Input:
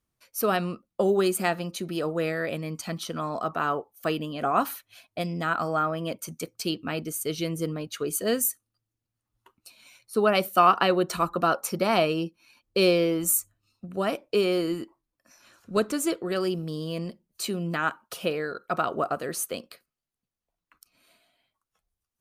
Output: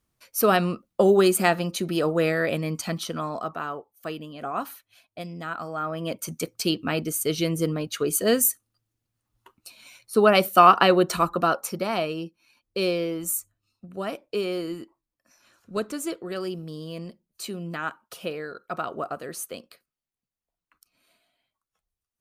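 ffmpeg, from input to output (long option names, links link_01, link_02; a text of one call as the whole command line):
ffmpeg -i in.wav -af "volume=15.5dB,afade=type=out:start_time=2.72:duration=0.97:silence=0.281838,afade=type=in:start_time=5.76:duration=0.56:silence=0.298538,afade=type=out:start_time=11:duration=0.92:silence=0.375837" out.wav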